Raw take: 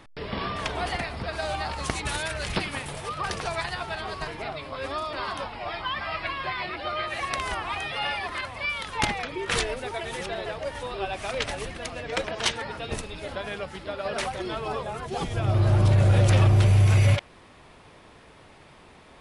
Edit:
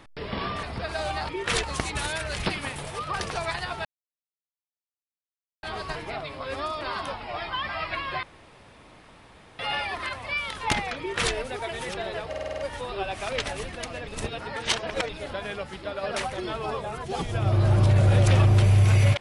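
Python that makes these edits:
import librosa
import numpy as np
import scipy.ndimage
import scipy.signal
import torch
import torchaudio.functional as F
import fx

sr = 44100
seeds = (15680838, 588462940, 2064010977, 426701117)

y = fx.edit(x, sr, fx.cut(start_s=0.63, length_s=0.44),
    fx.insert_silence(at_s=3.95, length_s=1.78),
    fx.room_tone_fill(start_s=6.55, length_s=1.36),
    fx.duplicate(start_s=9.31, length_s=0.34, to_s=1.73),
    fx.stutter(start_s=10.6, slice_s=0.05, count=7),
    fx.reverse_span(start_s=12.09, length_s=1.02), tone=tone)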